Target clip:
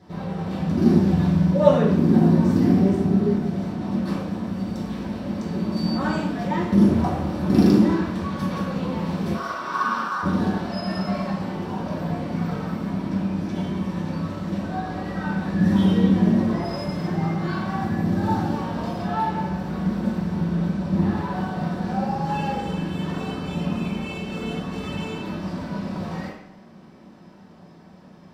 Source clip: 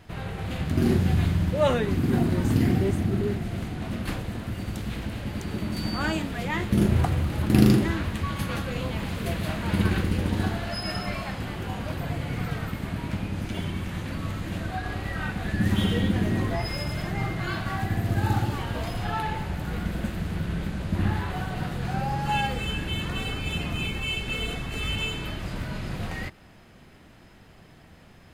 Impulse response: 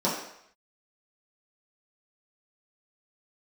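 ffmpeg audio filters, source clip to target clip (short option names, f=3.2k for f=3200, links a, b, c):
-filter_complex "[0:a]asettb=1/sr,asplit=3[a][b][c];[a]atrim=end=9.344[d];[b]atrim=start=9.34:end=10.23,asetpts=PTS-STARTPTS,afade=t=in:d=0.004:c=qsin,afade=t=out:st=0.886:d=0.004:c=qsin,aeval=exprs='val(0)*sin(2*PI*1300*n/s)':c=same[e];[c]atrim=start=10.226[f];[d][e]acrossfade=d=0.004:c1=hsin:c2=qsin[g];[g][f]acrossfade=d=0.004:c1=qsin:c2=hsin[h];[1:a]atrim=start_sample=2205[i];[h][i]afir=irnorm=-1:irlink=0,volume=-11dB"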